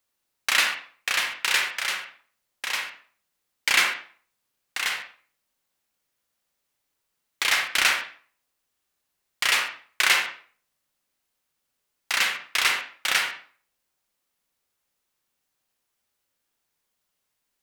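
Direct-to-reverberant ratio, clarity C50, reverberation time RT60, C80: 3.0 dB, 5.0 dB, 0.45 s, 10.5 dB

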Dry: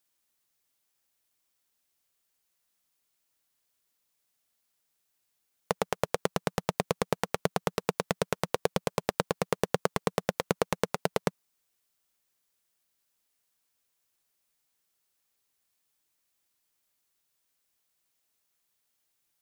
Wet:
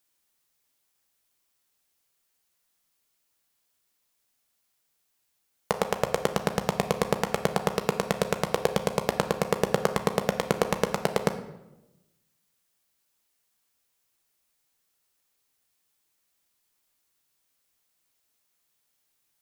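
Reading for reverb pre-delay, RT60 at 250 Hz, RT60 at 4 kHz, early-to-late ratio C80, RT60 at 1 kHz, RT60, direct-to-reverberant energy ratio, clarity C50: 14 ms, 1.3 s, 0.65 s, 13.0 dB, 0.90 s, 1.0 s, 7.0 dB, 11.0 dB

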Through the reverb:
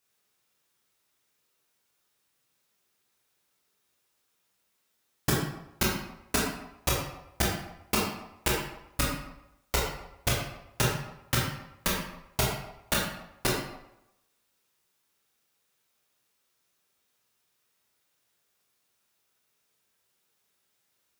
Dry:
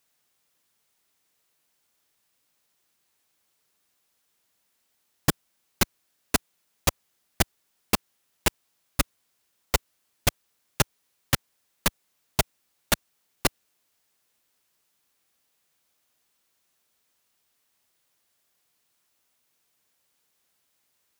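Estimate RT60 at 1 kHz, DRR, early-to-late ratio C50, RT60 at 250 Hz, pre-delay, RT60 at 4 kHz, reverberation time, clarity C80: 0.90 s, -4.0 dB, 2.0 dB, 0.75 s, 15 ms, 0.60 s, 0.90 s, 5.0 dB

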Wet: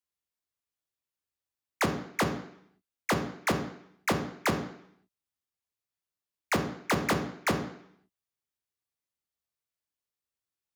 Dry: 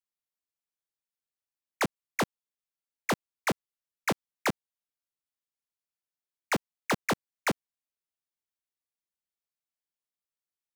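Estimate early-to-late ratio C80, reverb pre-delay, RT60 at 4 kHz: 11.5 dB, 11 ms, 0.70 s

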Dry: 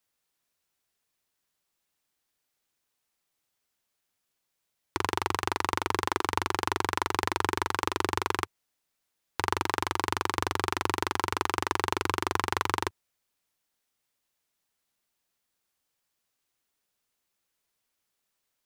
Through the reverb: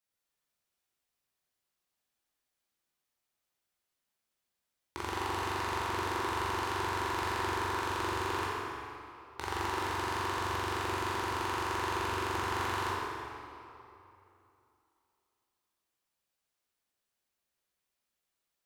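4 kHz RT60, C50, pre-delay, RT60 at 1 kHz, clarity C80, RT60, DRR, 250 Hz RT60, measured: 2.0 s, -3.5 dB, 13 ms, 2.9 s, -2.0 dB, 2.8 s, -6.5 dB, 2.8 s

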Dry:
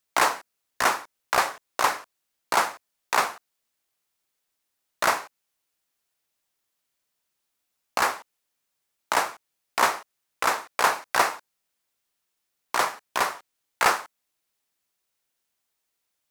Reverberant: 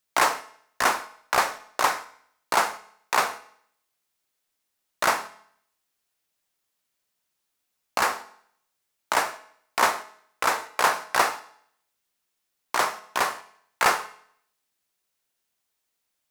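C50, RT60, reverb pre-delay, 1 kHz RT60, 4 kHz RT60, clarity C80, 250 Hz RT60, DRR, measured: 16.0 dB, 0.65 s, 5 ms, 0.65 s, 0.65 s, 19.0 dB, 0.65 s, 11.0 dB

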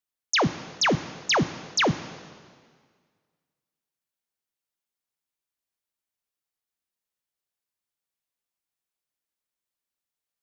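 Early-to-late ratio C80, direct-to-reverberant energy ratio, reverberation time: 14.5 dB, 12.0 dB, 1.8 s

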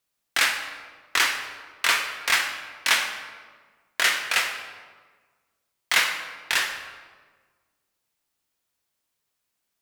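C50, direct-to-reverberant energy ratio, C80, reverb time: 6.0 dB, 3.0 dB, 8.0 dB, 1.5 s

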